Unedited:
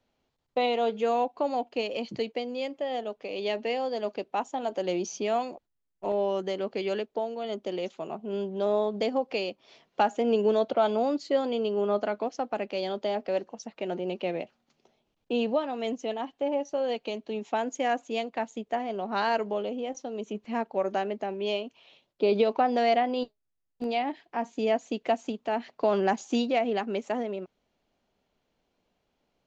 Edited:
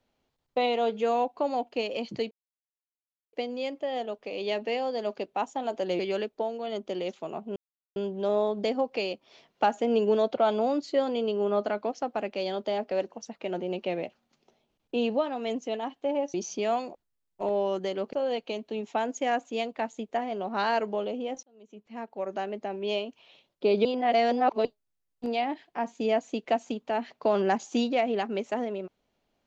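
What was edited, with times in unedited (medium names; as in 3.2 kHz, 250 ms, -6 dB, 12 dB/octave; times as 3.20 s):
2.31 s: insert silence 1.02 s
4.97–6.76 s: move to 16.71 s
8.33 s: insert silence 0.40 s
20.01–21.50 s: fade in
22.43–23.23 s: reverse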